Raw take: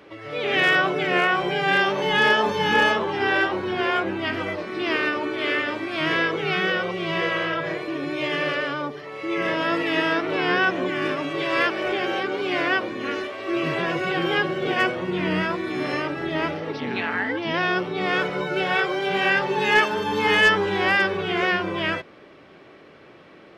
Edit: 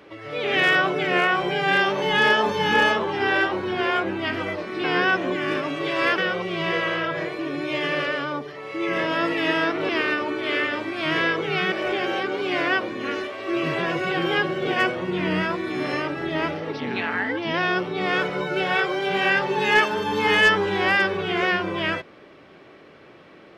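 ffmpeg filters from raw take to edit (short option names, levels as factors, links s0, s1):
-filter_complex "[0:a]asplit=5[s0][s1][s2][s3][s4];[s0]atrim=end=4.842[s5];[s1]atrim=start=10.378:end=11.722[s6];[s2]atrim=start=6.668:end=10.382[s7];[s3]atrim=start=4.838:end=6.672[s8];[s4]atrim=start=11.718[s9];[s5][s6]acrossfade=d=0.004:c1=hsin:c2=hsin[s10];[s10][s7]acrossfade=d=0.004:c1=hsin:c2=hsin[s11];[s11][s8]acrossfade=d=0.004:c1=hsin:c2=hsin[s12];[s12][s9]acrossfade=d=0.004:c1=hsin:c2=hsin"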